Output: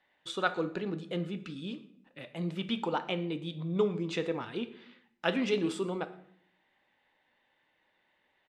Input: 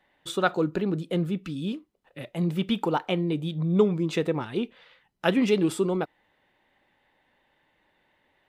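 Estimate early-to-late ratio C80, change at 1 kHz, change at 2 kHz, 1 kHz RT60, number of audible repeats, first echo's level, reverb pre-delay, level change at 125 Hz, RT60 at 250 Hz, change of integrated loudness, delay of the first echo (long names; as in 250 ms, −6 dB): 17.0 dB, −5.5 dB, −3.5 dB, 0.60 s, 1, −24.0 dB, 4 ms, −9.5 dB, 0.95 s, −7.0 dB, 116 ms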